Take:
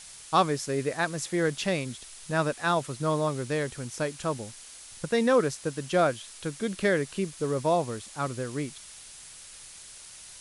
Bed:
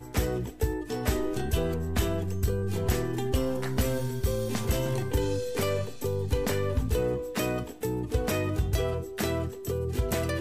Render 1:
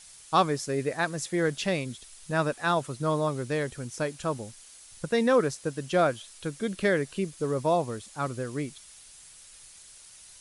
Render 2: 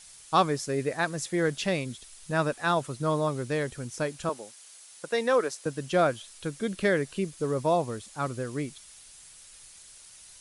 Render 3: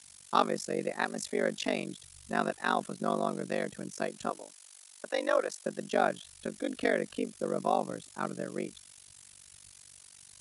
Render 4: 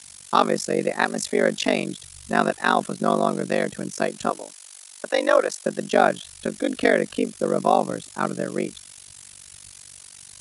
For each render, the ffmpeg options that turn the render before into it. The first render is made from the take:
ffmpeg -i in.wav -af "afftdn=noise_reduction=6:noise_floor=-47" out.wav
ffmpeg -i in.wav -filter_complex "[0:a]asettb=1/sr,asplit=3[link_01][link_02][link_03];[link_01]atrim=end=4.294[link_04];[link_02]atrim=start=4.29:end=5.66,asetpts=PTS-STARTPTS,afade=type=in:duration=0.004:curve=qsin,afade=type=out:start_time=1.366:duration=0.004:curve=qsin,highpass=390[link_05];[link_03]atrim=start=5.656[link_06];[link_04][link_05]acrossfade=duration=0.004:curve1=hsin:curve2=qsin[link_07];[link_07][link_06]acrossfade=duration=0.004:curve1=qsin:curve2=hsin" out.wav
ffmpeg -i in.wav -af "afreqshift=66,tremolo=f=48:d=0.974" out.wav
ffmpeg -i in.wav -af "volume=10dB,alimiter=limit=-3dB:level=0:latency=1" out.wav

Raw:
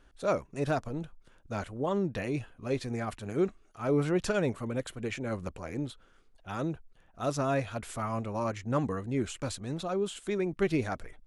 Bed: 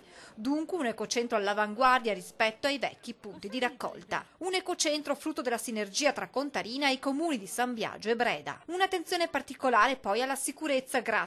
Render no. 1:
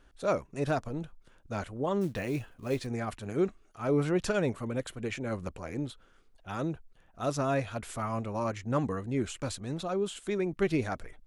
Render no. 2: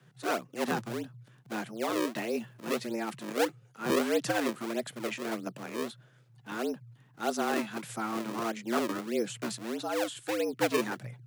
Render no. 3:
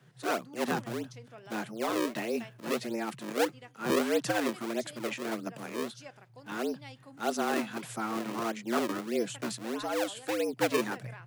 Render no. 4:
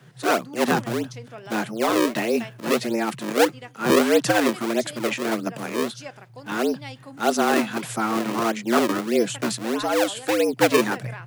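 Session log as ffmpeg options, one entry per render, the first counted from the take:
ffmpeg -i in.wav -filter_complex "[0:a]asettb=1/sr,asplit=3[link_01][link_02][link_03];[link_01]atrim=end=2.014[link_04];[link_02]atrim=start=2.01:end=2.87,asetpts=PTS-STARTPTS,afade=type=in:duration=0.004:curve=qsin,afade=type=out:start_time=0.856:duration=0.004:curve=qsin,acrusher=bits=6:mode=log:mix=0:aa=0.000001[link_05];[link_03]atrim=start=2.866[link_06];[link_04][link_05]acrossfade=duration=0.004:curve1=hsin:curve2=qsin[link_07];[link_07][link_06]acrossfade=duration=0.004:curve1=qsin:curve2=hsin" out.wav
ffmpeg -i in.wav -filter_complex "[0:a]acrossover=split=660|5000[link_01][link_02][link_03];[link_01]acrusher=samples=38:mix=1:aa=0.000001:lfo=1:lforange=60.8:lforate=1.6[link_04];[link_04][link_02][link_03]amix=inputs=3:normalize=0,afreqshift=110" out.wav
ffmpeg -i in.wav -i bed.wav -filter_complex "[1:a]volume=-21.5dB[link_01];[0:a][link_01]amix=inputs=2:normalize=0" out.wav
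ffmpeg -i in.wav -af "volume=10dB" out.wav

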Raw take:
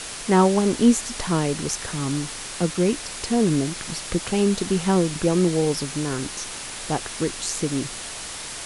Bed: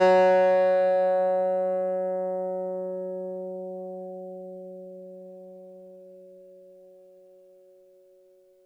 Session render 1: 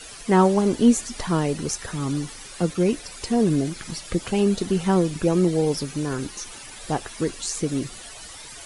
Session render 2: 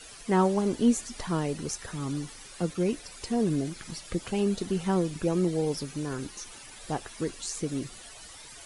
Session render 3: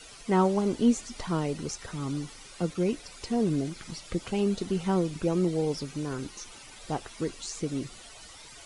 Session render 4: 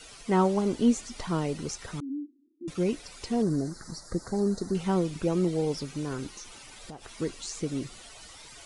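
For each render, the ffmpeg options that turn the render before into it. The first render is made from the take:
ffmpeg -i in.wav -af "afftdn=noise_reduction=13:noise_floor=-35" out.wav
ffmpeg -i in.wav -af "volume=-6.5dB" out.wav
ffmpeg -i in.wav -filter_complex "[0:a]bandreject=frequency=1700:width=14,acrossover=split=8100[link_01][link_02];[link_02]acompressor=threshold=-59dB:ratio=4:attack=1:release=60[link_03];[link_01][link_03]amix=inputs=2:normalize=0" out.wav
ffmpeg -i in.wav -filter_complex "[0:a]asettb=1/sr,asplit=3[link_01][link_02][link_03];[link_01]atrim=end=2.004[link_04];[link_02]atrim=start=2:end=2.68,asetpts=PTS-STARTPTS,afade=type=in:duration=0.004:curve=qsin,afade=type=out:start_time=0.676:duration=0.004:curve=qsin,asuperpass=centerf=290:order=8:qfactor=3[link_05];[link_03]atrim=start=2.676[link_06];[link_04][link_05]acrossfade=duration=0.004:curve1=hsin:curve2=qsin[link_07];[link_07][link_06]acrossfade=duration=0.004:curve1=qsin:curve2=hsin,asettb=1/sr,asplit=3[link_08][link_09][link_10];[link_08]atrim=end=3.424[link_11];[link_09]atrim=start=3.42:end=4.75,asetpts=PTS-STARTPTS,afade=type=in:duration=0.004:curve=qsin,afade=type=out:start_time=1.326:duration=0.004:curve=qsin,asuperstop=centerf=2800:order=8:qfactor=1.2[link_12];[link_10]atrim=start=4.746[link_13];[link_11][link_12]acrossfade=duration=0.004:curve1=hsin:curve2=qsin[link_14];[link_14][link_13]acrossfade=duration=0.004:curve1=qsin:curve2=hsin,asettb=1/sr,asplit=3[link_15][link_16][link_17];[link_15]atrim=end=6.304[link_18];[link_16]atrim=start=6.3:end=7.09,asetpts=PTS-STARTPTS,afade=type=in:duration=0.004:curve=qsin,afade=type=out:start_time=0.786:duration=0.004:curve=qsin,acompressor=threshold=-38dB:ratio=10:attack=3.2:release=140:knee=1:detection=peak[link_19];[link_17]atrim=start=7.086[link_20];[link_18][link_19]acrossfade=duration=0.004:curve1=hsin:curve2=qsin[link_21];[link_21][link_20]acrossfade=duration=0.004:curve1=qsin:curve2=hsin" out.wav

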